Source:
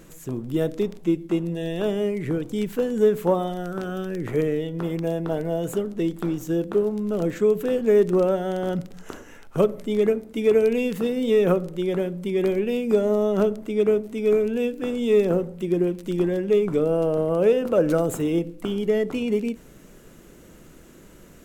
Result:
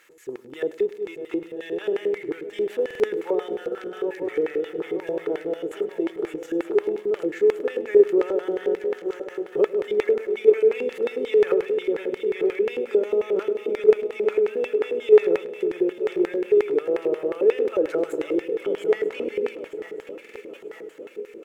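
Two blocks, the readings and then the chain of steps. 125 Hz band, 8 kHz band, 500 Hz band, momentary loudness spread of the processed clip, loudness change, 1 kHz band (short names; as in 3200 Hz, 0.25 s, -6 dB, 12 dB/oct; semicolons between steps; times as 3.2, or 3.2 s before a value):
under -20 dB, n/a, +1.0 dB, 13 LU, -0.5 dB, -4.5 dB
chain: regenerating reverse delay 0.462 s, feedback 77%, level -9.5 dB; added noise violet -54 dBFS; LFO band-pass square 5.6 Hz 390–2000 Hz; tone controls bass -10 dB, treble 0 dB; in parallel at -0.5 dB: level quantiser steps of 17 dB; on the sum: high shelf 4500 Hz +9 dB; comb 2.3 ms, depth 37%; on a send: feedback echo 0.103 s, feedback 53%, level -19.5 dB; on the sum: stuck buffer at 2.86/20.21, samples 2048, times 2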